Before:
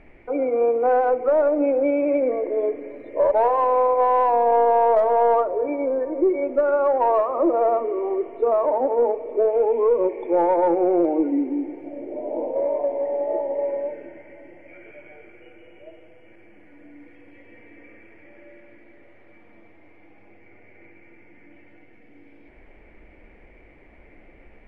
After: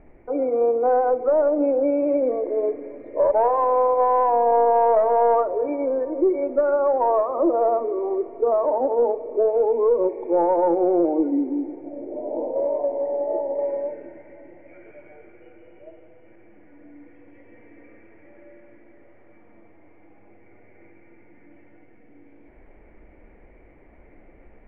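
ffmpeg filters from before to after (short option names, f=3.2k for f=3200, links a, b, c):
-af "asetnsamples=n=441:p=0,asendcmd='2.49 lowpass f 1500;4.76 lowpass f 1800;6.01 lowpass f 1500;6.73 lowpass f 1200;13.59 lowpass f 1600',lowpass=1.2k"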